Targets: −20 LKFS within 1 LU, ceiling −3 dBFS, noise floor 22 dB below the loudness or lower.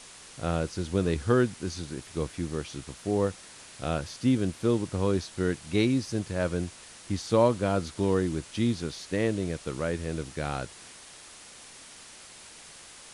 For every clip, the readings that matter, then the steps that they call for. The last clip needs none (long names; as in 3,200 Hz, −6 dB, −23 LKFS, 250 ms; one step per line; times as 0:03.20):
background noise floor −49 dBFS; target noise floor −51 dBFS; integrated loudness −29.0 LKFS; sample peak −10.0 dBFS; target loudness −20.0 LKFS
→ broadband denoise 6 dB, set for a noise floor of −49 dBFS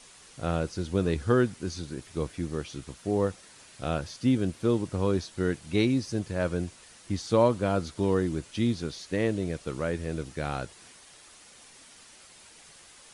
background noise floor −53 dBFS; integrated loudness −29.5 LKFS; sample peak −10.0 dBFS; target loudness −20.0 LKFS
→ level +9.5 dB
brickwall limiter −3 dBFS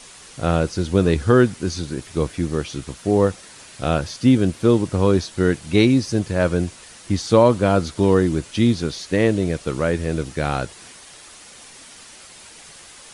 integrated loudness −20.0 LKFS; sample peak −3.0 dBFS; background noise floor −44 dBFS